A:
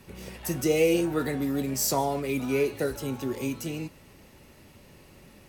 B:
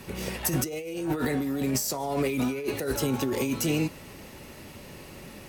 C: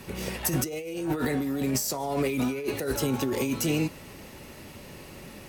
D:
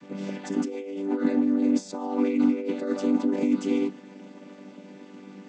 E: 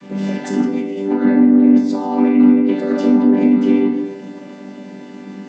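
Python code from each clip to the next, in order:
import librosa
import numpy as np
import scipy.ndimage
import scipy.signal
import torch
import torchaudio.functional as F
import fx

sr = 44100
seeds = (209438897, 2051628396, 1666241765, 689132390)

y1 = fx.low_shelf(x, sr, hz=120.0, db=-4.5)
y1 = fx.over_compress(y1, sr, threshold_db=-33.0, ratio=-1.0)
y1 = F.gain(torch.from_numpy(y1), 4.5).numpy()
y2 = y1
y3 = fx.chord_vocoder(y2, sr, chord='major triad', root=55)
y3 = fx.attack_slew(y3, sr, db_per_s=350.0)
y3 = F.gain(torch.from_numpy(y3), 4.5).numpy()
y4 = fx.env_lowpass_down(y3, sr, base_hz=2300.0, full_db=-20.0)
y4 = fx.room_shoebox(y4, sr, seeds[0], volume_m3=330.0, walls='mixed', distance_m=1.2)
y4 = F.gain(torch.from_numpy(y4), 7.0).numpy()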